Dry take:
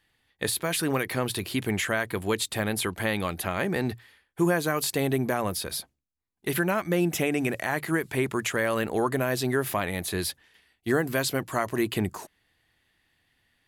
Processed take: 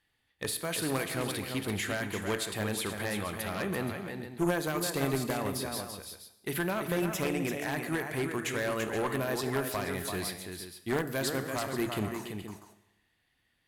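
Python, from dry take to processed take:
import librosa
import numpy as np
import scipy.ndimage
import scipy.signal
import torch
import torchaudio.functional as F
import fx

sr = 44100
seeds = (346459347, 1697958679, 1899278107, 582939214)

p1 = x + fx.echo_multitap(x, sr, ms=(337, 474), db=(-7.0, -12.5), dry=0)
p2 = fx.rev_schroeder(p1, sr, rt60_s=0.93, comb_ms=26, drr_db=11.0)
p3 = fx.cheby_harmonics(p2, sr, harmonics=(4, 6), levels_db=(-8, -14), full_scale_db=-10.0)
y = p3 * 10.0 ** (-6.0 / 20.0)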